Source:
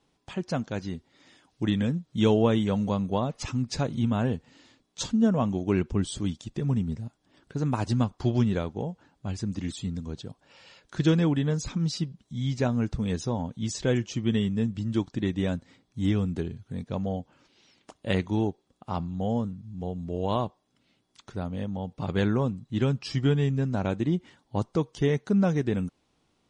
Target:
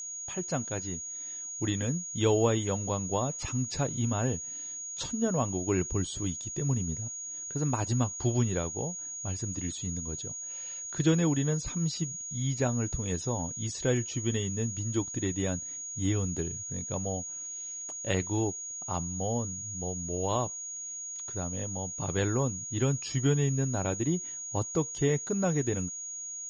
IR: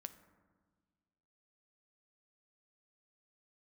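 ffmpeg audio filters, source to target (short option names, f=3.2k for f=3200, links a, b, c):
-filter_complex "[0:a]equalizer=f=210:w=7.7:g=-14.5,aeval=exprs='val(0)+0.0251*sin(2*PI*6700*n/s)':c=same,acrossover=split=5600[a][b];[b]acompressor=threshold=-41dB:ratio=4:attack=1:release=60[c];[a][c]amix=inputs=2:normalize=0,volume=-2dB"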